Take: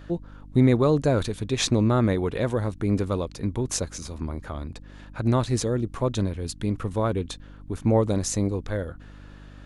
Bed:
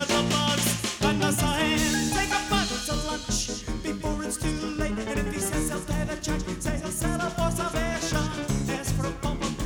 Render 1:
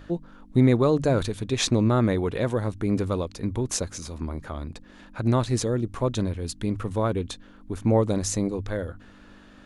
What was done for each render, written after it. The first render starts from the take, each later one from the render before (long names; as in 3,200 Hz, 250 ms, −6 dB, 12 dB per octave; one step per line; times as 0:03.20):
hum removal 50 Hz, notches 3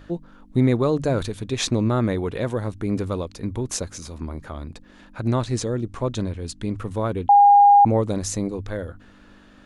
0:05.31–0:06.79: low-pass filter 9,700 Hz 24 dB per octave
0:07.29–0:07.85: beep over 812 Hz −8.5 dBFS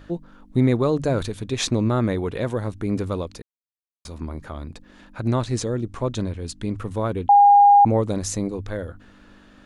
0:03.42–0:04.05: silence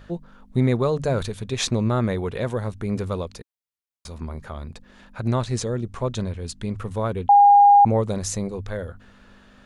parametric band 300 Hz −12.5 dB 0.23 octaves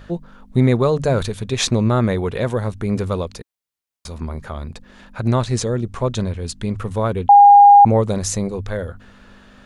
level +5 dB